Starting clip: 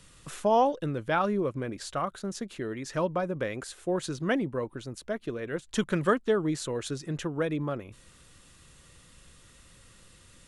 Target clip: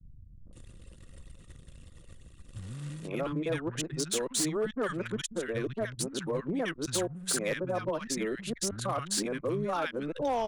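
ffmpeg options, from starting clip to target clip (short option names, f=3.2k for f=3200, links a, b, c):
-filter_complex "[0:a]areverse,highshelf=f=2.4k:g=-9,acompressor=threshold=-40dB:ratio=4,acrossover=split=180|1300[a][b][c];[b]adelay=460[d];[c]adelay=520[e];[a][d][e]amix=inputs=3:normalize=0,acontrast=68,anlmdn=0.00398,crystalizer=i=6:c=0,volume=26.5dB,asoftclip=hard,volume=-26.5dB,volume=2.5dB"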